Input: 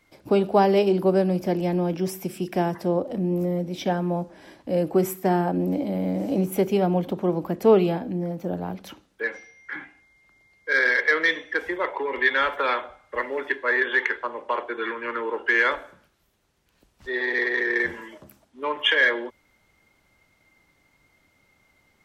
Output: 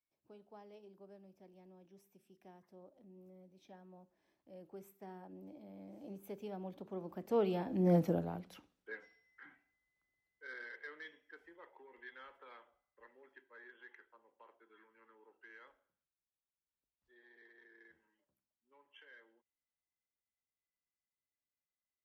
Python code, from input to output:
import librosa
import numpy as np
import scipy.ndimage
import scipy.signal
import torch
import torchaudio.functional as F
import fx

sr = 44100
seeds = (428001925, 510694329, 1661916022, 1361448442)

y = fx.doppler_pass(x, sr, speed_mps=15, closest_m=1.1, pass_at_s=7.96)
y = y * 10.0 ** (2.5 / 20.0)